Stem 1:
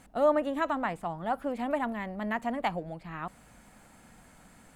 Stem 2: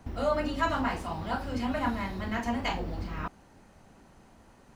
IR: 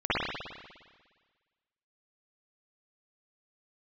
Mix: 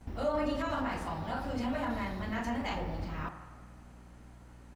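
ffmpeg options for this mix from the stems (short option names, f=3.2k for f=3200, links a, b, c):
-filter_complex "[0:a]bandreject=f=690:w=12,volume=-16dB,asplit=2[a][b];[b]volume=-8.5dB[c];[1:a]alimiter=limit=-24dB:level=0:latency=1:release=17,aeval=exprs='val(0)+0.00355*(sin(2*PI*60*n/s)+sin(2*PI*2*60*n/s)/2+sin(2*PI*3*60*n/s)/3+sin(2*PI*4*60*n/s)/4+sin(2*PI*5*60*n/s)/5)':c=same,adelay=9.2,volume=-3dB[d];[2:a]atrim=start_sample=2205[e];[c][e]afir=irnorm=-1:irlink=0[f];[a][d][f]amix=inputs=3:normalize=0"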